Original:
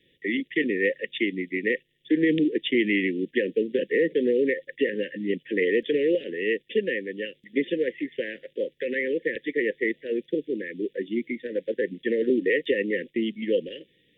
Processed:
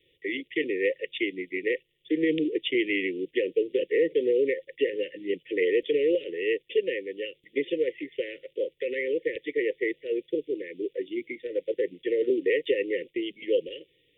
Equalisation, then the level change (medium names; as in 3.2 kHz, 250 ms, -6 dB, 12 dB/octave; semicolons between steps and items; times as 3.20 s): static phaser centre 1.1 kHz, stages 8; 0.0 dB